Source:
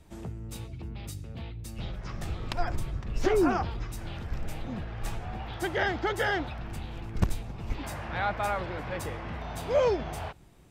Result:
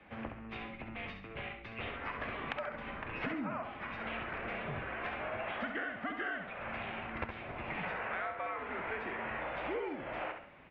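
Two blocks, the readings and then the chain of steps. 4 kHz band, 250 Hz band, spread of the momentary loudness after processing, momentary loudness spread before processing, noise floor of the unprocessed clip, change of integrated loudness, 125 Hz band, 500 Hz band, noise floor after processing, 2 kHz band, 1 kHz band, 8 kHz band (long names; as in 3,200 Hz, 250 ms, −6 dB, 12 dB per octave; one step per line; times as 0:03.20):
−7.5 dB, −8.5 dB, 6 LU, 14 LU, −43 dBFS, −7.0 dB, −14.0 dB, −10.5 dB, −50 dBFS, −2.5 dB, −5.5 dB, below −35 dB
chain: spectral tilt +4 dB per octave
hum removal 113.2 Hz, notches 37
single-sideband voice off tune −110 Hz 170–2,600 Hz
downward compressor 12 to 1, threshold −43 dBFS, peak gain reduction 20.5 dB
on a send: repeating echo 67 ms, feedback 34%, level −7 dB
on the sum: level +7 dB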